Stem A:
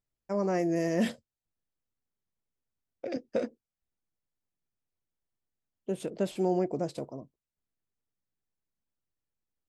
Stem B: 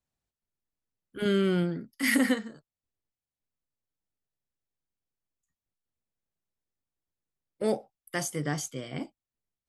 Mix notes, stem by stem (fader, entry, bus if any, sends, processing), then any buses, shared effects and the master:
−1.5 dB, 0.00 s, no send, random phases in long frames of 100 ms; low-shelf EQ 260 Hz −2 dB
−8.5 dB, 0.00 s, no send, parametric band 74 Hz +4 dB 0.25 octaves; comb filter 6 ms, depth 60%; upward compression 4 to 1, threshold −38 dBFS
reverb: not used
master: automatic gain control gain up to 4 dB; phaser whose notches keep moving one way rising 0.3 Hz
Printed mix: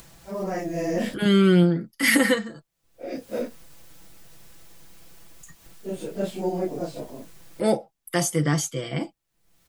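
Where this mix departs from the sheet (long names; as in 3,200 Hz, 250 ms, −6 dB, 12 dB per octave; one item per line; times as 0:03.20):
stem B −8.5 dB → +2.5 dB
master: missing phaser whose notches keep moving one way rising 0.3 Hz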